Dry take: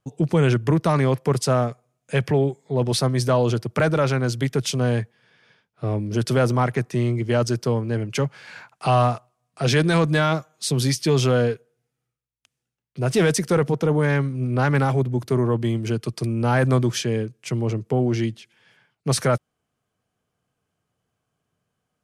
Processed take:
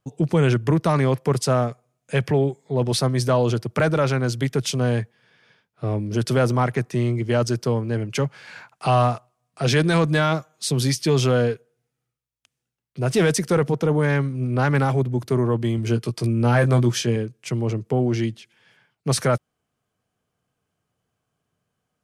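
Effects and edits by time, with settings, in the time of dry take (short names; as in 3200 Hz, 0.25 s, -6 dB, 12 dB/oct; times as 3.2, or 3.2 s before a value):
15.76–17.16 doubler 17 ms -6.5 dB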